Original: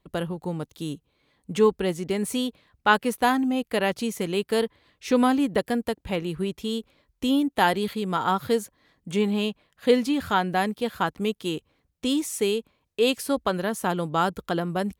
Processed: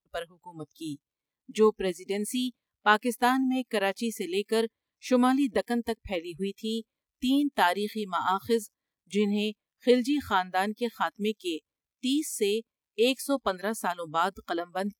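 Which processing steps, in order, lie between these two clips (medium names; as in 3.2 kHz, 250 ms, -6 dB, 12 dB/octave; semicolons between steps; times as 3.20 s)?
crackle 190 per s -50 dBFS; spectral noise reduction 24 dB; trim -2.5 dB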